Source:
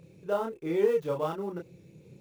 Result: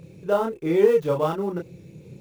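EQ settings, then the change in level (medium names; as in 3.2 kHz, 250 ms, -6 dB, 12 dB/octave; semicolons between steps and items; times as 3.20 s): bass shelf 170 Hz +4 dB; +7.0 dB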